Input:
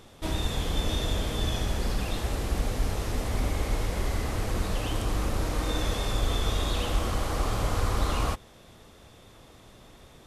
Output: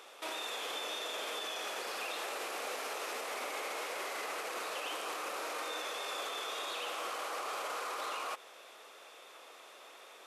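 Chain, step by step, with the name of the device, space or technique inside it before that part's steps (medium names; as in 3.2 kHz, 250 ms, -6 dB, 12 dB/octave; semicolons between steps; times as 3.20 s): laptop speaker (high-pass 440 Hz 24 dB/octave; peaking EQ 1.3 kHz +5 dB 0.57 oct; peaking EQ 2.5 kHz +6 dB 0.39 oct; peak limiter -30.5 dBFS, peak gain reduction 11 dB)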